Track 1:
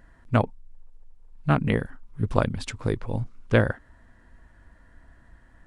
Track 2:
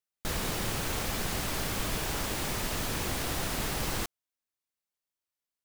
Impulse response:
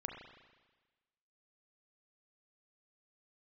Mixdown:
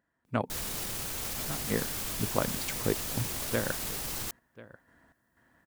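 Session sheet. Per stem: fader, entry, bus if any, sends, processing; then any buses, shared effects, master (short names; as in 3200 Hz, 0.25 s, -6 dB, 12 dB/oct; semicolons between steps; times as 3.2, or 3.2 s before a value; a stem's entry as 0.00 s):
-2.5 dB, 0.00 s, no send, echo send -19 dB, HPF 150 Hz 12 dB/oct; random-step tremolo 4.1 Hz, depth 85%; vocal rider 0.5 s
-1.5 dB, 0.25 s, no send, no echo send, high shelf 4700 Hz +11 dB; limiter -24.5 dBFS, peak gain reduction 9.5 dB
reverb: off
echo: echo 1.04 s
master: dry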